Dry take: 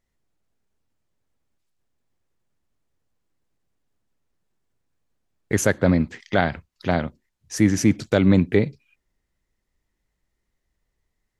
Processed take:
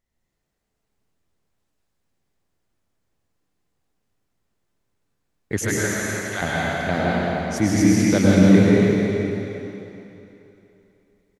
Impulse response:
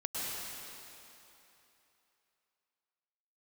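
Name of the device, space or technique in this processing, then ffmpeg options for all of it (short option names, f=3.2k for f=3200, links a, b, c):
cave: -filter_complex "[0:a]asettb=1/sr,asplit=3[a][b][c];[a]atrim=end=5.594[d];[b]atrim=start=5.59:end=6.42,asetpts=PTS-STARTPTS,afade=t=in:d=0.004:c=qsin,afade=t=out:st=0.826:d=0.004:c=qsin,highpass=1.2k[e];[c]atrim=start=6.416[f];[d][e]acrossfade=d=0.004:c1=hsin:c2=qsin[g];[g][f]acrossfade=d=0.004:c1=qsin:c2=hsin,aecho=1:1:304:0.355[h];[1:a]atrim=start_sample=2205[i];[h][i]afir=irnorm=-1:irlink=0,volume=-1dB"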